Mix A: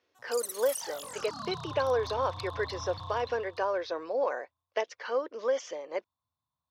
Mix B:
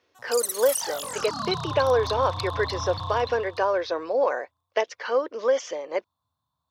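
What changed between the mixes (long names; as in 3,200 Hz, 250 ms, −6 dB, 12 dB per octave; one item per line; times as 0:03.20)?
speech +6.5 dB
background +9.0 dB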